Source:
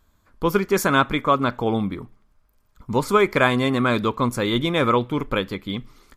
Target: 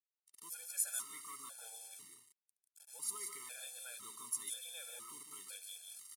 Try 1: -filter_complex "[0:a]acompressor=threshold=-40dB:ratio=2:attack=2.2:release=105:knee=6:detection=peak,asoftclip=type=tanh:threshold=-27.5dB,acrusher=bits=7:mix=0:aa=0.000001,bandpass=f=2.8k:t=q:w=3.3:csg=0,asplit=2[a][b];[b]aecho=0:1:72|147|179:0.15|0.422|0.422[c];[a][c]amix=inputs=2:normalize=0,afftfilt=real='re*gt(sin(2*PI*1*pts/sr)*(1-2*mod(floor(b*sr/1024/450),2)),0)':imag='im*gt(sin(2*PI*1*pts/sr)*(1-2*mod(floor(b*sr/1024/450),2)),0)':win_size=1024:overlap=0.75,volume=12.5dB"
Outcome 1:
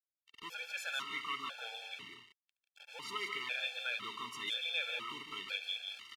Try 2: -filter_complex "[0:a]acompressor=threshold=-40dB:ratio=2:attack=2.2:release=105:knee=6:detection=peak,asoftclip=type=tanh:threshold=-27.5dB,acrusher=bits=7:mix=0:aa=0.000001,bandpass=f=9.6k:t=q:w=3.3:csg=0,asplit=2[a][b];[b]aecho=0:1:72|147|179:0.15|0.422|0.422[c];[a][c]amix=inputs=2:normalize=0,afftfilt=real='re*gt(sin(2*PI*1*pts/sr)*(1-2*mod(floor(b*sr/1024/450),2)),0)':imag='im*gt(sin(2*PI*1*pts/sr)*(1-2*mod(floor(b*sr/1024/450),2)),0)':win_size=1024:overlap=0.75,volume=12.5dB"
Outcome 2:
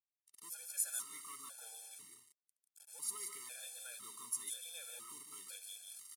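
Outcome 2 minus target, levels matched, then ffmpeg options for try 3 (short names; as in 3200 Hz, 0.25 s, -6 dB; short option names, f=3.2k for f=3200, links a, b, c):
soft clip: distortion +10 dB
-filter_complex "[0:a]acompressor=threshold=-40dB:ratio=2:attack=2.2:release=105:knee=6:detection=peak,asoftclip=type=tanh:threshold=-20.5dB,acrusher=bits=7:mix=0:aa=0.000001,bandpass=f=9.6k:t=q:w=3.3:csg=0,asplit=2[a][b];[b]aecho=0:1:72|147|179:0.15|0.422|0.422[c];[a][c]amix=inputs=2:normalize=0,afftfilt=real='re*gt(sin(2*PI*1*pts/sr)*(1-2*mod(floor(b*sr/1024/450),2)),0)':imag='im*gt(sin(2*PI*1*pts/sr)*(1-2*mod(floor(b*sr/1024/450),2)),0)':win_size=1024:overlap=0.75,volume=12.5dB"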